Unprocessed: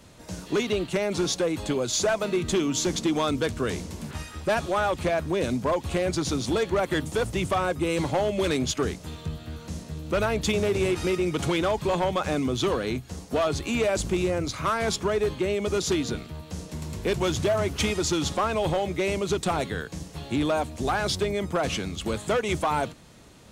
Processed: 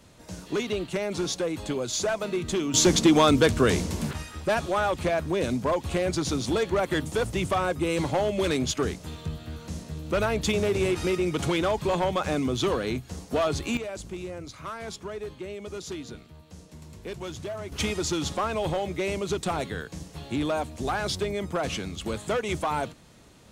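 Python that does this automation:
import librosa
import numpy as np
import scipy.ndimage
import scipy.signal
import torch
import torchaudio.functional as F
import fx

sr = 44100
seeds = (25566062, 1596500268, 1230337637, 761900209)

y = fx.gain(x, sr, db=fx.steps((0.0, -3.0), (2.74, 6.5), (4.13, -0.5), (13.77, -11.0), (17.72, -2.5)))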